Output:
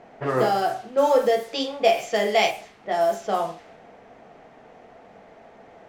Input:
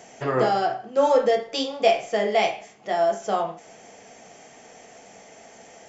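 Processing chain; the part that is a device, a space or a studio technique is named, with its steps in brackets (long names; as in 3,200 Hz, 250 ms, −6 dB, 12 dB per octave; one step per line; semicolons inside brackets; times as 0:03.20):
0:01.97–0:02.51: high-shelf EQ 2,200 Hz +6.5 dB
cassette deck with a dynamic noise filter (white noise bed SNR 22 dB; low-pass that shuts in the quiet parts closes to 1,200 Hz, open at −18 dBFS)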